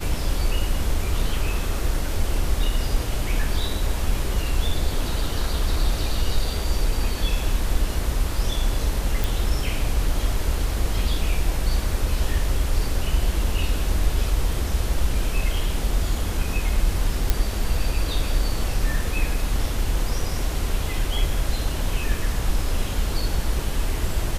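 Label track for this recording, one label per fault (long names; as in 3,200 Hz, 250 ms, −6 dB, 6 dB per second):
9.240000	9.240000	click
17.300000	17.300000	click −5 dBFS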